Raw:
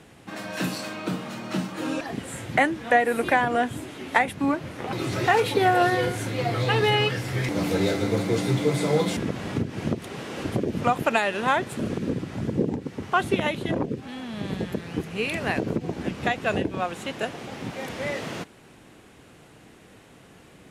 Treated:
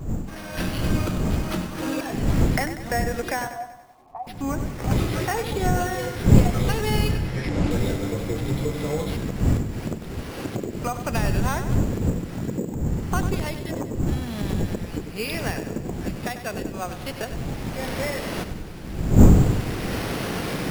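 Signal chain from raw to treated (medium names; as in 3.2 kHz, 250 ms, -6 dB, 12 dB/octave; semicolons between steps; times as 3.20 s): recorder AGC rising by 12 dB/s; wind noise 160 Hz -18 dBFS; sample-and-hold 6×; wow and flutter 23 cents; 3.47–4.27 s: cascade formant filter a; 7.11–7.71 s: distance through air 58 m; bit-crushed delay 96 ms, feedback 55%, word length 8-bit, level -10.5 dB; trim -7 dB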